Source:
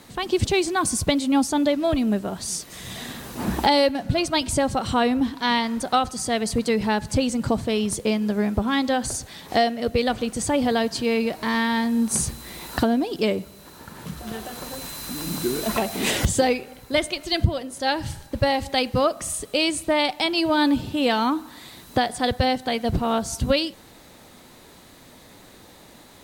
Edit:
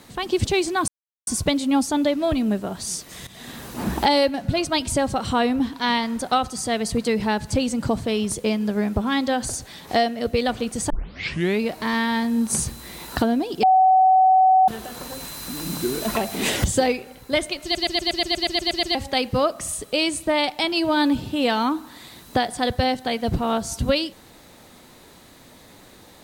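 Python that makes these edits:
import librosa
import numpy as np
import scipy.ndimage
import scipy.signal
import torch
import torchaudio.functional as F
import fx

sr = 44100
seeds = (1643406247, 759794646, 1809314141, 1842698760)

y = fx.edit(x, sr, fx.insert_silence(at_s=0.88, length_s=0.39),
    fx.fade_in_from(start_s=2.88, length_s=0.33, floor_db=-15.0),
    fx.tape_start(start_s=10.51, length_s=0.71),
    fx.bleep(start_s=13.24, length_s=1.05, hz=754.0, db=-11.5),
    fx.stutter_over(start_s=17.24, slice_s=0.12, count=11), tone=tone)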